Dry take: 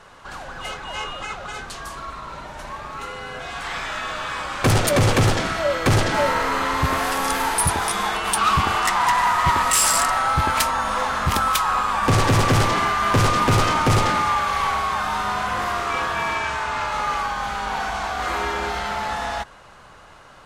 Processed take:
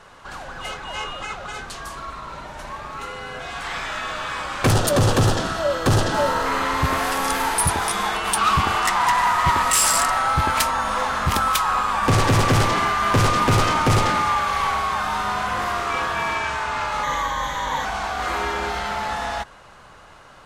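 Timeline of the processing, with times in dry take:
4.71–6.46 s: peaking EQ 2.2 kHz -12.5 dB 0.33 oct
17.03–17.85 s: rippled EQ curve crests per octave 1.1, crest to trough 13 dB

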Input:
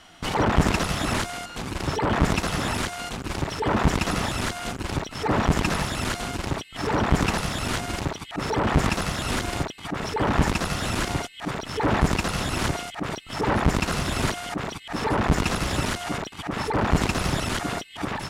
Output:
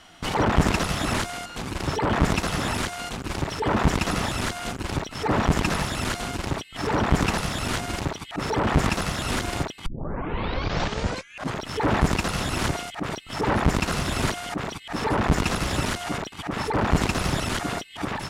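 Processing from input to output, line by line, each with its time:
9.86 s: tape start 1.80 s

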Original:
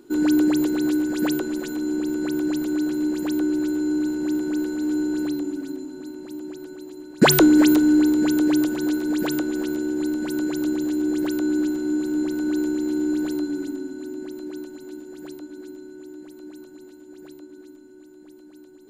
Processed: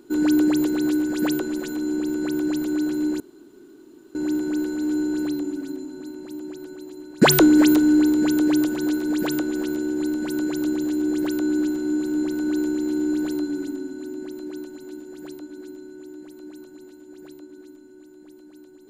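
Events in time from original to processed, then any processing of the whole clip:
3.20–4.15 s: room tone

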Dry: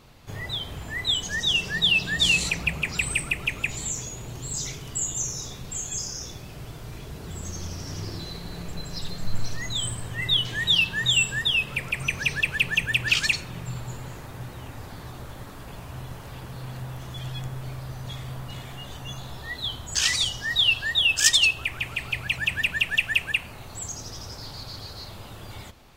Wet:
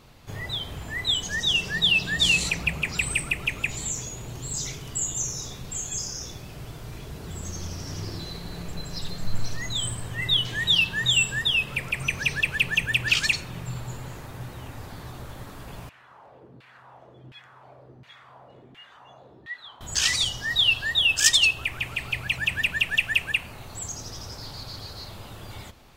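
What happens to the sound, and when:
15.89–19.81 s: LFO band-pass saw down 1.4 Hz 250–2500 Hz

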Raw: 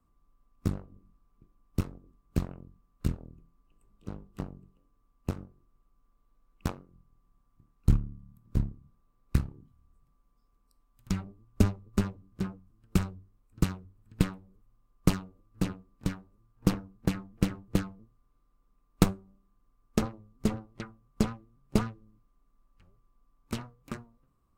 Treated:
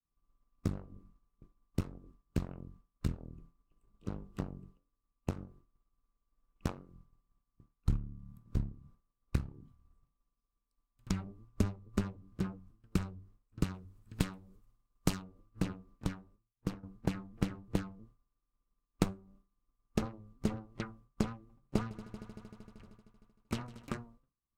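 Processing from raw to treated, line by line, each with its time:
13.74–15.22 s: treble shelf 3.4 kHz +9.5 dB
15.91–16.83 s: fade out, to -13 dB
21.34–23.96 s: multi-head delay 77 ms, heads second and third, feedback 73%, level -23 dB
whole clip: expander -55 dBFS; treble shelf 11 kHz -9 dB; compression 2:1, threshold -39 dBFS; trim +3.5 dB

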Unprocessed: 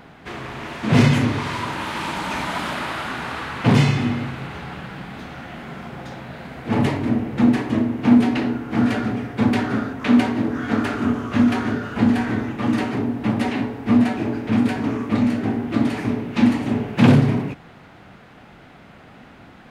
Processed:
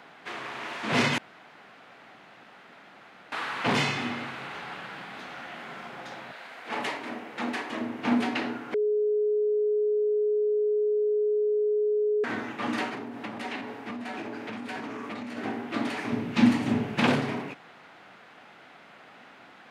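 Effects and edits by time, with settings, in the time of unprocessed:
1.18–3.32 s: room tone
6.31–7.80 s: high-pass 850 Hz -> 410 Hz 6 dB/octave
8.74–12.24 s: bleep 421 Hz -14.5 dBFS
12.89–15.37 s: compression, threshold -23 dBFS
16.12–17.00 s: tone controls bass +15 dB, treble +3 dB
whole clip: frequency weighting A; trim -3 dB

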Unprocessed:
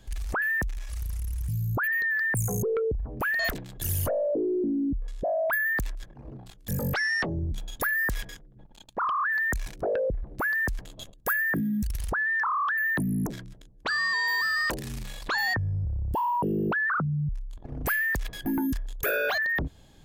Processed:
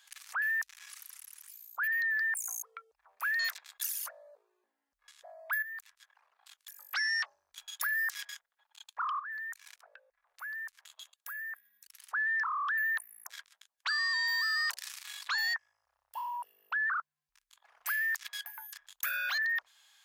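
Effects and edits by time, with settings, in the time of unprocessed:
2.57–4.55 s: band-stop 3 kHz
5.62–6.93 s: compression 4:1, threshold -43 dBFS
9.19–12.10 s: compression 4:1, threshold -41 dBFS
whole clip: dynamic bell 5.3 kHz, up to +6 dB, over -47 dBFS, Q 1.4; compression, threshold -29 dBFS; inverse Chebyshev high-pass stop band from 330 Hz, stop band 60 dB

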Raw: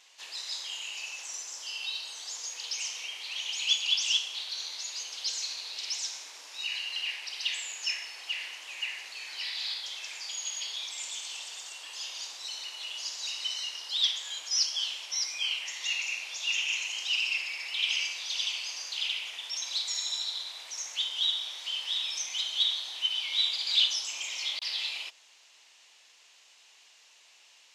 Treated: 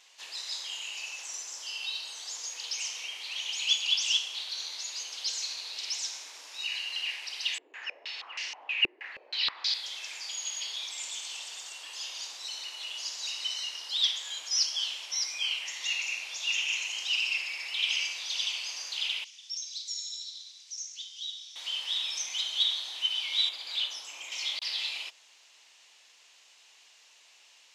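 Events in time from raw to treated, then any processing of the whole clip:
7.58–9.74 s: step-sequenced low-pass 6.3 Hz 370–5700 Hz
19.24–21.56 s: band-pass filter 5.7 kHz, Q 3.1
23.49–24.32 s: peaking EQ 5.3 kHz -10 dB 2 oct

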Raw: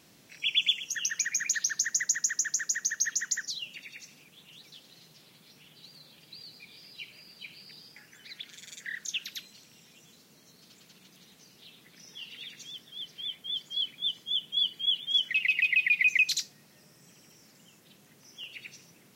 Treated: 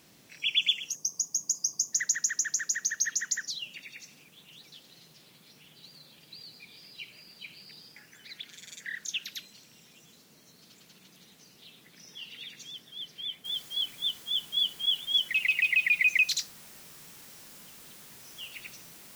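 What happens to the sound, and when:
0.95–1.93 s: spectral selection erased 1.2–4.7 kHz
13.45 s: noise floor step -70 dB -51 dB

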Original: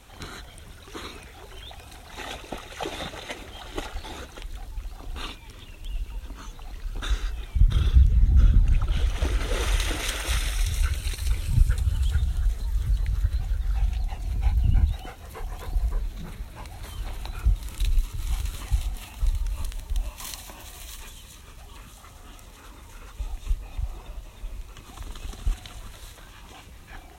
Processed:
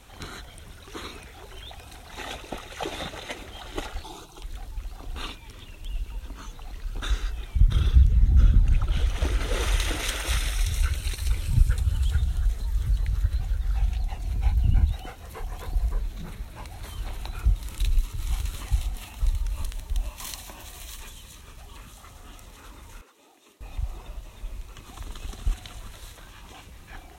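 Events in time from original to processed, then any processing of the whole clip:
4.03–4.43 s: static phaser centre 360 Hz, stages 8
23.01–23.61 s: ladder high-pass 270 Hz, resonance 45%

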